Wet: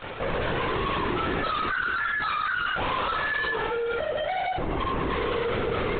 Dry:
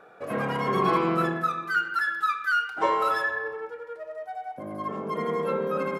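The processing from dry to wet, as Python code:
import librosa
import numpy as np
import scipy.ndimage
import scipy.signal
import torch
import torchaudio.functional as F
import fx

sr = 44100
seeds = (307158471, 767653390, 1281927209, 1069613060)

y = fx.echo_multitap(x, sr, ms=(41, 51), db=(-4.5, -4.5))
y = fx.leveller(y, sr, passes=5)
y = fx.doubler(y, sr, ms=15.0, db=-6.0)
y = 10.0 ** (-19.5 / 20.0) * np.tanh(y / 10.0 ** (-19.5 / 20.0))
y = fx.lpc_vocoder(y, sr, seeds[0], excitation='whisper', order=16)
y = fx.env_flatten(y, sr, amount_pct=50)
y = y * 10.0 ** (-7.0 / 20.0)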